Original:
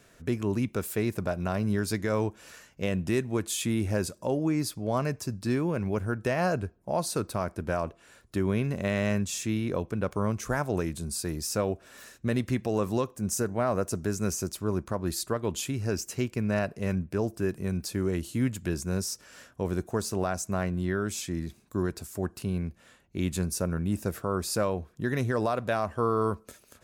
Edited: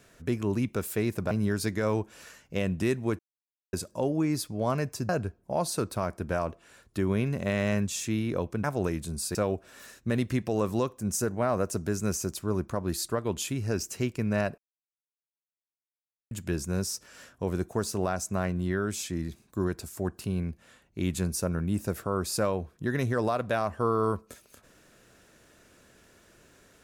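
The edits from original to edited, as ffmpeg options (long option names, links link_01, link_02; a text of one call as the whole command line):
ffmpeg -i in.wav -filter_complex "[0:a]asplit=9[link_01][link_02][link_03][link_04][link_05][link_06][link_07][link_08][link_09];[link_01]atrim=end=1.312[link_10];[link_02]atrim=start=1.578:end=3.46,asetpts=PTS-STARTPTS,afade=type=out:start_time=1.878:duration=0.004:curve=hsin[link_11];[link_03]atrim=start=3.46:end=4,asetpts=PTS-STARTPTS,volume=0[link_12];[link_04]atrim=start=4:end=5.362,asetpts=PTS-STARTPTS,afade=type=in:duration=0.004:curve=hsin[link_13];[link_05]atrim=start=6.468:end=10.022[link_14];[link_06]atrim=start=10.568:end=11.282[link_15];[link_07]atrim=start=11.528:end=16.76,asetpts=PTS-STARTPTS,afade=type=out:start_time=5.228:duration=0.004:curve=hsin[link_16];[link_08]atrim=start=16.76:end=18.49,asetpts=PTS-STARTPTS,volume=0[link_17];[link_09]atrim=start=18.49,asetpts=PTS-STARTPTS,afade=type=in:duration=0.004:curve=hsin[link_18];[link_11][link_12][link_13]concat=n=3:v=0:a=1[link_19];[link_10][link_19]acrossfade=duration=0.004:curve1=hsin:curve2=hsin[link_20];[link_20][link_14]acrossfade=duration=0.004:curve1=hsin:curve2=hsin[link_21];[link_21][link_15]acrossfade=duration=0.004:curve1=hsin:curve2=hsin[link_22];[link_16][link_17][link_18]concat=n=3:v=0:a=1[link_23];[link_22][link_23]acrossfade=duration=0.004:curve1=hsin:curve2=hsin" out.wav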